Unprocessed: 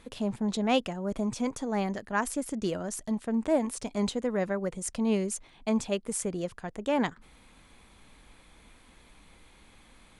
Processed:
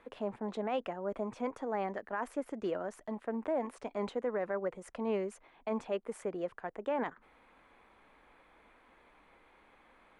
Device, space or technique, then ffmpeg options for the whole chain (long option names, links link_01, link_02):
DJ mixer with the lows and highs turned down: -filter_complex "[0:a]acrossover=split=330 2300:gain=0.158 1 0.0794[link_01][link_02][link_03];[link_01][link_02][link_03]amix=inputs=3:normalize=0,alimiter=level_in=1dB:limit=-24dB:level=0:latency=1:release=22,volume=-1dB"